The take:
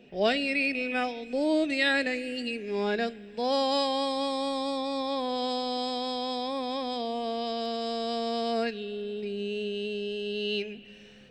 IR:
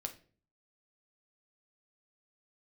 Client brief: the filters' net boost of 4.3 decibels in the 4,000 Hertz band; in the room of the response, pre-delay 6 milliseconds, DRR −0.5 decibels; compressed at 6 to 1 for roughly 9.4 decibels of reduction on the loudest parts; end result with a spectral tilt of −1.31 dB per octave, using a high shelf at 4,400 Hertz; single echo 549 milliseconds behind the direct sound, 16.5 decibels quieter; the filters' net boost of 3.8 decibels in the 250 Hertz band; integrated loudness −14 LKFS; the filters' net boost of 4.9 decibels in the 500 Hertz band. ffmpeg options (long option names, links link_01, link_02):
-filter_complex "[0:a]equalizer=frequency=250:width_type=o:gain=3,equalizer=frequency=500:width_type=o:gain=5,equalizer=frequency=4000:width_type=o:gain=9,highshelf=frequency=4400:gain=-7.5,acompressor=threshold=-27dB:ratio=6,aecho=1:1:549:0.15,asplit=2[link_01][link_02];[1:a]atrim=start_sample=2205,adelay=6[link_03];[link_02][link_03]afir=irnorm=-1:irlink=0,volume=2dB[link_04];[link_01][link_04]amix=inputs=2:normalize=0,volume=13.5dB"